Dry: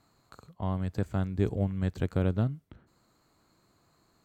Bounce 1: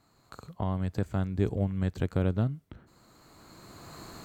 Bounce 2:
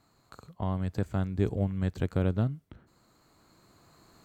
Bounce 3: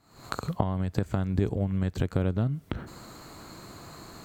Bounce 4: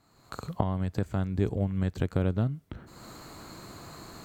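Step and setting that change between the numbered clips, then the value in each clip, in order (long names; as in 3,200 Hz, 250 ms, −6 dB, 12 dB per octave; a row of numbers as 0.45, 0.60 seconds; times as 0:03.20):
camcorder AGC, rising by: 14, 5.2, 88, 35 dB per second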